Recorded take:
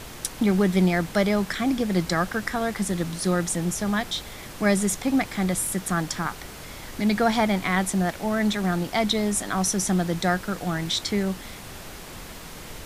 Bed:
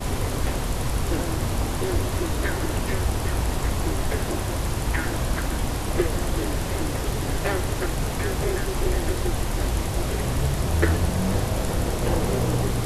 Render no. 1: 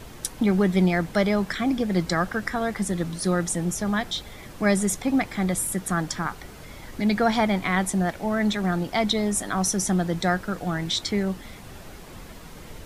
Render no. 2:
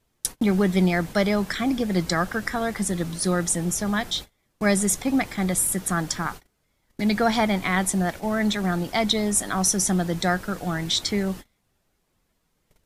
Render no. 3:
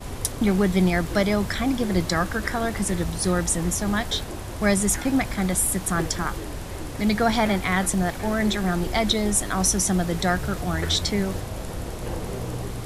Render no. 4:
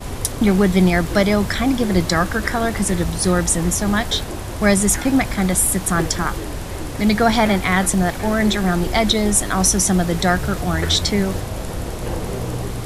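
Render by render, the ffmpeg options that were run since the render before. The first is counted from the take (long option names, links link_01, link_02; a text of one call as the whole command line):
ffmpeg -i in.wav -af "afftdn=noise_reduction=7:noise_floor=-40" out.wav
ffmpeg -i in.wav -af "agate=range=-30dB:threshold=-34dB:ratio=16:detection=peak,highshelf=frequency=4200:gain=5.5" out.wav
ffmpeg -i in.wav -i bed.wav -filter_complex "[1:a]volume=-7.5dB[link_01];[0:a][link_01]amix=inputs=2:normalize=0" out.wav
ffmpeg -i in.wav -af "volume=5.5dB,alimiter=limit=-2dB:level=0:latency=1" out.wav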